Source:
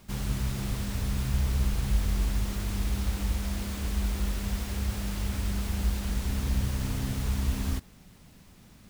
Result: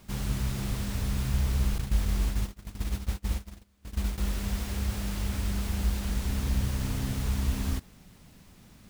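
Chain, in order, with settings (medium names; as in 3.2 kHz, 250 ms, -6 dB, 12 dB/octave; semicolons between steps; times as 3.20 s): 1.78–4.18 s: gate -27 dBFS, range -33 dB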